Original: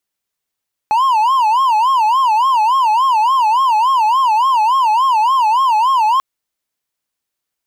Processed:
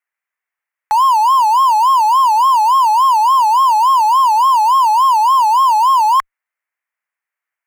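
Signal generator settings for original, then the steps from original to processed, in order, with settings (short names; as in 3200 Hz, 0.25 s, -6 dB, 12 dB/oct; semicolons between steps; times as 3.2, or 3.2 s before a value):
siren wail 849–1080 Hz 3.5/s triangle -8 dBFS 5.29 s
HPF 840 Hz 12 dB/oct; resonant high shelf 2800 Hz -11.5 dB, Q 3; in parallel at -9 dB: fuzz box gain 43 dB, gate -43 dBFS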